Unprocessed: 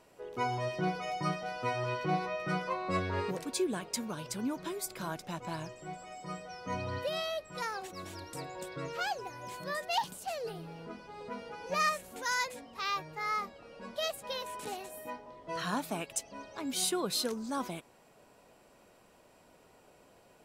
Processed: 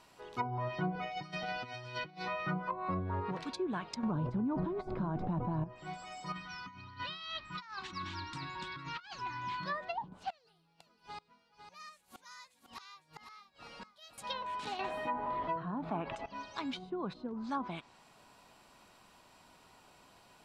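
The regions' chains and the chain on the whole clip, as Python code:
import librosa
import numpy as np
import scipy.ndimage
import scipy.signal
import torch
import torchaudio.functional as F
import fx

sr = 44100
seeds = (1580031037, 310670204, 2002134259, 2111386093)

y = fx.chain(x, sr, fx.peak_eq(hz=1100.0, db=-12.5, octaves=0.47),
    fx.over_compress(threshold_db=-40.0, ratio=-0.5), at=(0.92, 2.28))
y = fx.chain(y, sr, fx.low_shelf(hz=61.0, db=4.5),
    fx.env_flatten(amount_pct=100), at=(4.03, 5.64))
y = fx.chain(y, sr, fx.lowpass(hz=4200.0, slope=12),
    fx.band_shelf(hz=560.0, db=-15.5, octaves=1.1),
    fx.over_compress(threshold_db=-44.0, ratio=-0.5), at=(6.32, 9.66))
y = fx.chain(y, sr, fx.high_shelf(hz=2200.0, db=4.5),
    fx.gate_flip(shuts_db=-37.0, range_db=-27),
    fx.echo_single(ms=503, db=-8.5), at=(10.3, 14.18))
y = fx.chain(y, sr, fx.bass_treble(bass_db=-3, treble_db=-7),
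    fx.env_flatten(amount_pct=70), at=(14.79, 16.26))
y = fx.graphic_eq(y, sr, hz=(500, 1000, 4000), db=(-9, 6, 7))
y = fx.env_lowpass_down(y, sr, base_hz=500.0, full_db=-27.5)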